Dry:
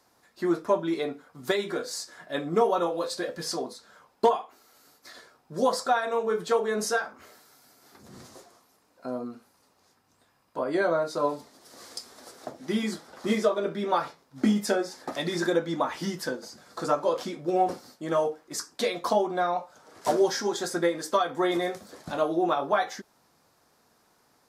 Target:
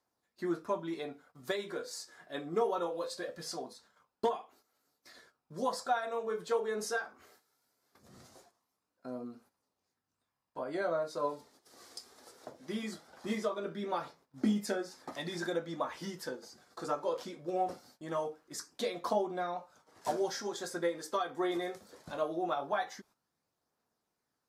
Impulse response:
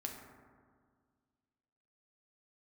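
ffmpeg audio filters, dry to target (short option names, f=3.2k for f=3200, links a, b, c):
-af "aphaser=in_gain=1:out_gain=1:delay=2.7:decay=0.25:speed=0.21:type=triangular,agate=range=-11dB:threshold=-53dB:ratio=16:detection=peak,volume=-9dB"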